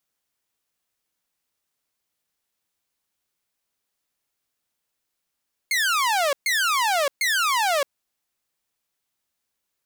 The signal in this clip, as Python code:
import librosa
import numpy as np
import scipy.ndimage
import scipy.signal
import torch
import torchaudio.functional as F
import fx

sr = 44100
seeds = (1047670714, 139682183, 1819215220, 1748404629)

y = fx.laser_zaps(sr, level_db=-16.5, start_hz=2200.0, end_hz=540.0, length_s=0.62, wave='saw', shots=3, gap_s=0.13)